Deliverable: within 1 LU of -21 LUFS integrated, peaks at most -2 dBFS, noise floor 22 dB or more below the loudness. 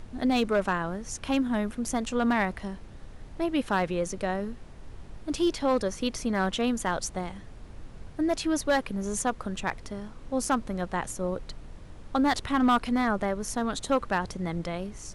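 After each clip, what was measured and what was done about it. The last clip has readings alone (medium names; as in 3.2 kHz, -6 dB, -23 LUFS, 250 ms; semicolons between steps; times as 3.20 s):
clipped samples 0.4%; clipping level -17.0 dBFS; noise floor -46 dBFS; noise floor target -51 dBFS; loudness -28.5 LUFS; peak level -17.0 dBFS; loudness target -21.0 LUFS
-> clip repair -17 dBFS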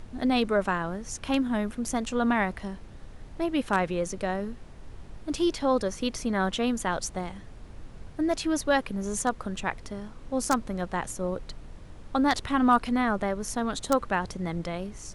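clipped samples 0.0%; noise floor -46 dBFS; noise floor target -51 dBFS
-> noise print and reduce 6 dB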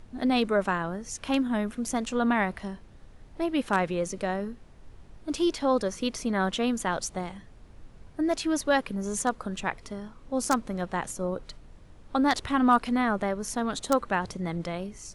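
noise floor -51 dBFS; loudness -28.5 LUFS; peak level -8.0 dBFS; loudness target -21.0 LUFS
-> trim +7.5 dB; peak limiter -2 dBFS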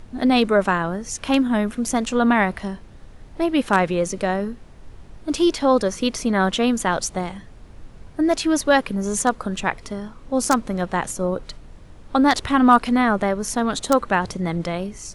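loudness -21.0 LUFS; peak level -2.0 dBFS; noise floor -44 dBFS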